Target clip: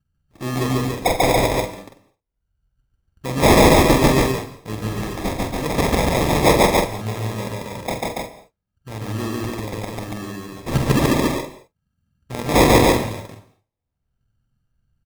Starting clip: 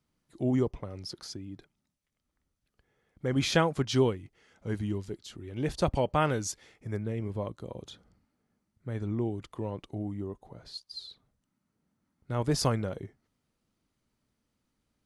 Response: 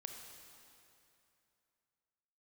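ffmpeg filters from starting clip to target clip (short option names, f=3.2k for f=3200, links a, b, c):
-filter_complex "[0:a]bandreject=f=50:t=h:w=6,bandreject=f=100:t=h:w=6,agate=range=-33dB:threshold=-50dB:ratio=3:detection=peak,bandreject=f=6k:w=12,acrossover=split=140|2100[a][b][c];[a]acompressor=mode=upward:threshold=-42dB:ratio=2.5[d];[d][b][c]amix=inputs=3:normalize=0,aexciter=amount=11.7:drive=4.7:freq=2.1k,acrusher=samples=30:mix=1:aa=0.000001,asoftclip=type=tanh:threshold=-9.5dB,asplit=2[e][f];[f]adelay=46,volume=-6.5dB[g];[e][g]amix=inputs=2:normalize=0,aecho=1:1:142.9|282.8:1|0.794,asplit=2[h][i];[1:a]atrim=start_sample=2205,afade=t=out:st=0.34:d=0.01,atrim=end_sample=15435,asetrate=57330,aresample=44100[j];[i][j]afir=irnorm=-1:irlink=0,volume=5dB[k];[h][k]amix=inputs=2:normalize=0,volume=-3.5dB"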